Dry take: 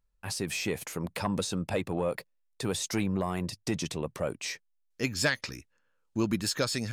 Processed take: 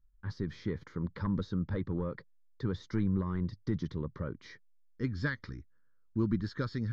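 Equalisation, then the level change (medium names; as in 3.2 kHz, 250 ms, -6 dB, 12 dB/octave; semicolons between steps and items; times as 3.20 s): tape spacing loss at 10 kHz 37 dB; bass shelf 70 Hz +11 dB; static phaser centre 2.6 kHz, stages 6; 0.0 dB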